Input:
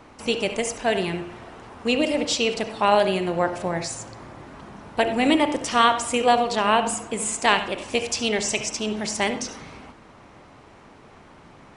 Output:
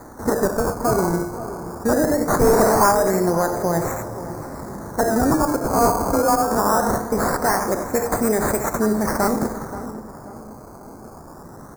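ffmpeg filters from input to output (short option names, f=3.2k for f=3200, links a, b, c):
-filter_complex "[0:a]acrossover=split=1400[a][b];[a]alimiter=limit=-18.5dB:level=0:latency=1:release=139[c];[c][b]amix=inputs=2:normalize=0,asplit=3[d][e][f];[d]afade=t=out:st=2.4:d=0.02[g];[e]asplit=2[h][i];[i]highpass=f=720:p=1,volume=28dB,asoftclip=type=tanh:threshold=-11dB[j];[h][j]amix=inputs=2:normalize=0,lowpass=f=1.8k:p=1,volume=-6dB,afade=t=in:st=2.4:d=0.02,afade=t=out:st=2.9:d=0.02[k];[f]afade=t=in:st=2.9:d=0.02[l];[g][k][l]amix=inputs=3:normalize=0,acrusher=samples=16:mix=1:aa=0.000001:lfo=1:lforange=16:lforate=0.21,asettb=1/sr,asplit=3[m][n][o];[m]atrim=end=5.694[p];[n]atrim=start=5.69:end=6.6,asetpts=PTS-STARTPTS,afade=t=in:d=0.004:c=qsin,afade=t=out:st=0.906:d=0.004:c=qsin,afreqshift=24[q];[o]atrim=start=6.596[r];[p][q]acrossfade=d=0.004:c1=hsin:c2=qsin[s];[s][r]acrossfade=d=0.004:c1=qsin:c2=hsin,asoftclip=type=tanh:threshold=-17dB,asuperstop=centerf=3000:order=4:qfactor=0.67,asplit=2[t][u];[u]adelay=531,lowpass=f=1.6k:p=1,volume=-13dB,asplit=2[v][w];[w]adelay=531,lowpass=f=1.6k:p=1,volume=0.47,asplit=2[x][y];[y]adelay=531,lowpass=f=1.6k:p=1,volume=0.47,asplit=2[z][aa];[aa]adelay=531,lowpass=f=1.6k:p=1,volume=0.47,asplit=2[ab][ac];[ac]adelay=531,lowpass=f=1.6k:p=1,volume=0.47[ad];[t][v][x][z][ab][ad]amix=inputs=6:normalize=0,volume=8.5dB"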